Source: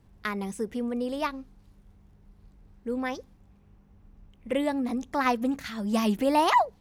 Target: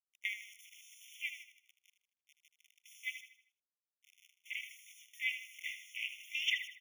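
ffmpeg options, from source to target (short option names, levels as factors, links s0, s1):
-filter_complex "[0:a]afwtdn=0.0141,aemphasis=mode=reproduction:type=75fm,bandreject=f=60:t=h:w=6,bandreject=f=120:t=h:w=6,bandreject=f=180:t=h:w=6,asplit=2[s0][s1];[s1]acompressor=threshold=0.0224:ratio=6,volume=0.891[s2];[s0][s2]amix=inputs=2:normalize=0,aeval=exprs='val(0)*gte(abs(val(0)),0.00668)':c=same,asplit=2[s3][s4];[s4]asetrate=35002,aresample=44100,atempo=1.25992,volume=0.224[s5];[s3][s5]amix=inputs=2:normalize=0,asuperstop=centerf=1800:order=4:qfactor=3.3,asplit=2[s6][s7];[s7]aecho=0:1:78|156|234|312|390:0.299|0.128|0.0552|0.0237|0.0102[s8];[s6][s8]amix=inputs=2:normalize=0,afftfilt=real='re*eq(mod(floor(b*sr/1024/1800),2),1)':imag='im*eq(mod(floor(b*sr/1024/1800),2),1)':win_size=1024:overlap=0.75,volume=1.58"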